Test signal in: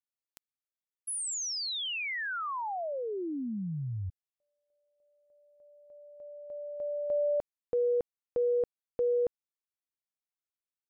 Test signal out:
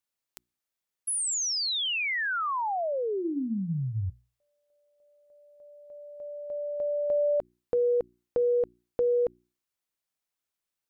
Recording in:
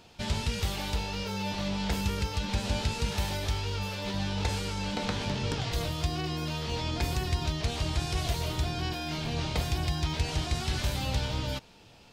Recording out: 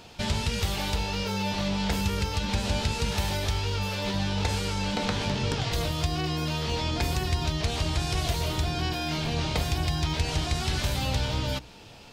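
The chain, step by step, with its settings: notches 60/120/180/240/300/360 Hz; in parallel at +2 dB: compressor, threshold -36 dBFS

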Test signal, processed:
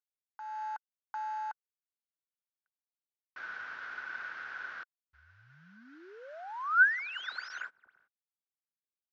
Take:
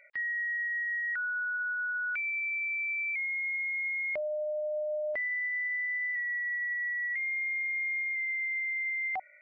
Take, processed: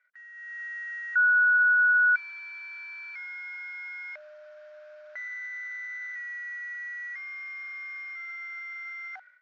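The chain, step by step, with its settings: CVSD 32 kbps; AGC gain up to 13.5 dB; band-pass 1500 Hz, Q 14

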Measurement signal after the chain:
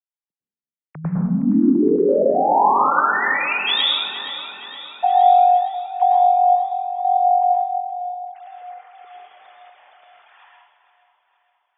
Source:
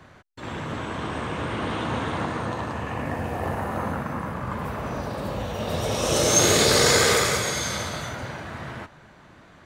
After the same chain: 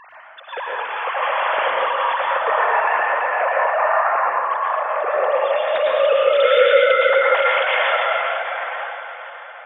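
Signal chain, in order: sine-wave speech; compressor 6:1, threshold -23 dBFS; step gate "xxx.x.x.xx" 115 bpm -12 dB; echo with dull and thin repeats by turns 0.234 s, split 950 Hz, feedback 72%, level -9 dB; plate-style reverb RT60 1 s, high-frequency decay 0.9×, pre-delay 95 ms, DRR -3.5 dB; gain +7.5 dB

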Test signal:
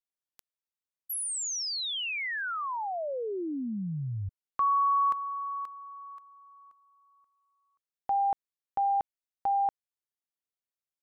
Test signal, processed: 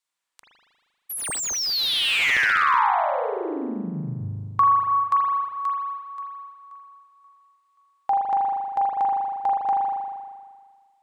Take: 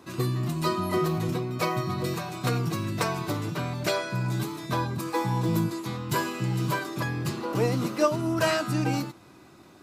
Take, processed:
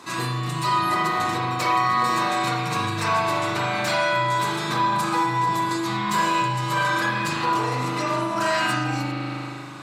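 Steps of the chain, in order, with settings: limiter -22 dBFS; bell 63 Hz -10 dB 1 oct; spring tank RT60 1.7 s, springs 39 ms, chirp 45 ms, DRR -5.5 dB; compressor 4:1, threshold -26 dBFS; ten-band EQ 1000 Hz +10 dB, 2000 Hz +7 dB, 4000 Hz +8 dB, 8000 Hz +12 dB; slew limiter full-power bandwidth 310 Hz

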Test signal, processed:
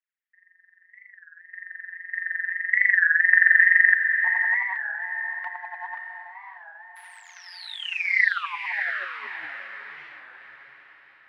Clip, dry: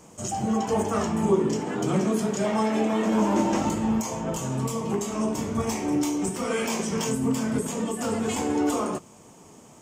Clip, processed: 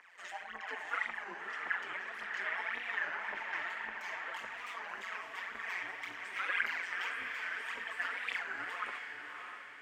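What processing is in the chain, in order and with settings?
high shelf 8600 Hz +9 dB; compressor, threshold -26 dBFS; phaser 1.8 Hz, delay 3.5 ms, feedback 73%; resonant high-pass 1800 Hz, resonance Q 5.2; AM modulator 180 Hz, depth 55%; air absorption 420 m; on a send: diffused feedback echo 0.637 s, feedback 44%, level -6 dB; on the sum: record warp 33 1/3 rpm, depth 160 cents

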